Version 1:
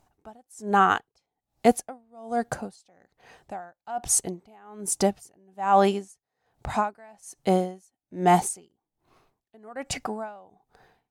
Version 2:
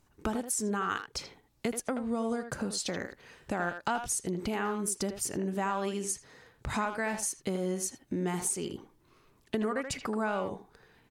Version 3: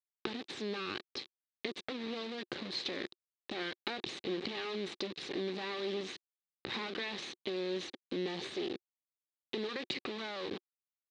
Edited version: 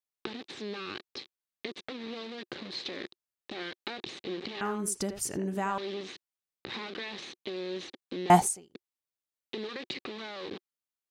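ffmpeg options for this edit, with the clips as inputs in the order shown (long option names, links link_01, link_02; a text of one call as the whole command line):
ffmpeg -i take0.wav -i take1.wav -i take2.wav -filter_complex "[2:a]asplit=3[link_01][link_02][link_03];[link_01]atrim=end=4.612[link_04];[1:a]atrim=start=4.608:end=5.782[link_05];[link_02]atrim=start=5.778:end=8.302[link_06];[0:a]atrim=start=8.298:end=8.752[link_07];[link_03]atrim=start=8.748[link_08];[link_04][link_05]acrossfade=duration=0.004:curve1=hsin:curve2=hsin[link_09];[link_09][link_06]acrossfade=duration=0.004:curve1=hsin:curve2=hsin[link_10];[link_10][link_07]acrossfade=duration=0.004:curve1=hsin:curve2=hsin[link_11];[link_11][link_08]acrossfade=duration=0.004:curve1=hsin:curve2=hsin" out.wav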